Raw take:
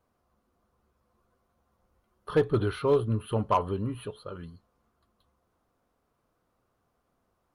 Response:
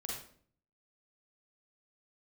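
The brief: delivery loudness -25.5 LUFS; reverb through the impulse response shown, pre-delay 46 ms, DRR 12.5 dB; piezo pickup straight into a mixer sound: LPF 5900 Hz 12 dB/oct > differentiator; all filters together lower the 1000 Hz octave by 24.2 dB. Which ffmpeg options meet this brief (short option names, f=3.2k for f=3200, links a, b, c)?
-filter_complex "[0:a]equalizer=f=1k:t=o:g=-8,asplit=2[a][b];[1:a]atrim=start_sample=2205,adelay=46[c];[b][c]afir=irnorm=-1:irlink=0,volume=-12.5dB[d];[a][d]amix=inputs=2:normalize=0,lowpass=5.9k,aderivative,volume=26.5dB"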